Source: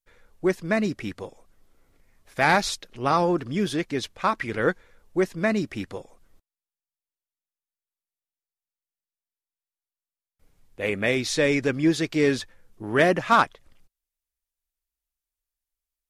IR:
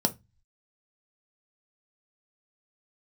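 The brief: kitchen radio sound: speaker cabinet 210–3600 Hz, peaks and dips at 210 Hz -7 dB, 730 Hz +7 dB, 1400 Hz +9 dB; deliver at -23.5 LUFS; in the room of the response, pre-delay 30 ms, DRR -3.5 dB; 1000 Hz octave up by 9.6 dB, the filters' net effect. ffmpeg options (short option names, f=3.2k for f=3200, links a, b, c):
-filter_complex "[0:a]equalizer=f=1k:t=o:g=6.5,asplit=2[a][b];[1:a]atrim=start_sample=2205,adelay=30[c];[b][c]afir=irnorm=-1:irlink=0,volume=-5dB[d];[a][d]amix=inputs=2:normalize=0,highpass=210,equalizer=f=210:t=q:w=4:g=-7,equalizer=f=730:t=q:w=4:g=7,equalizer=f=1.4k:t=q:w=4:g=9,lowpass=f=3.6k:w=0.5412,lowpass=f=3.6k:w=1.3066,volume=-11dB"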